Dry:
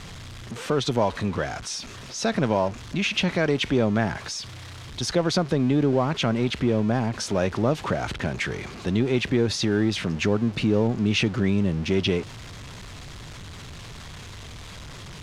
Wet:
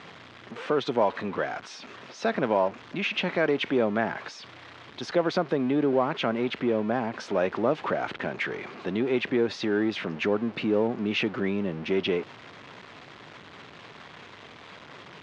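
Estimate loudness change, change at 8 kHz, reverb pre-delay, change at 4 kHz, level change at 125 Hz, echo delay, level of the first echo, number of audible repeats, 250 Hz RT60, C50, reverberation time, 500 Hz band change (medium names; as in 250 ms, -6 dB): -3.0 dB, under -15 dB, no reverb, -6.0 dB, -12.0 dB, no echo, no echo, no echo, no reverb, no reverb, no reverb, -0.5 dB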